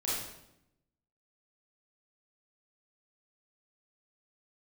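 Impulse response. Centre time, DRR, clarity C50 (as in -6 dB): 73 ms, -8.5 dB, -1.5 dB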